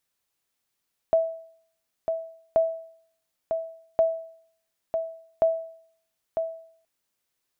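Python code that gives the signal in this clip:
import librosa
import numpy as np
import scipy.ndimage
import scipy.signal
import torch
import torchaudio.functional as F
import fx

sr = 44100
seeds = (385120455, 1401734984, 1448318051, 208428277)

y = fx.sonar_ping(sr, hz=654.0, decay_s=0.59, every_s=1.43, pings=4, echo_s=0.95, echo_db=-6.5, level_db=-13.5)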